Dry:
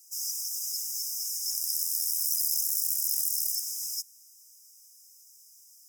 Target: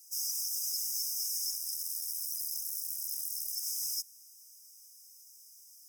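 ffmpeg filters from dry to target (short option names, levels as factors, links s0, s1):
-af "bandreject=f=7200:w=9,alimiter=limit=0.0668:level=0:latency=1:release=72"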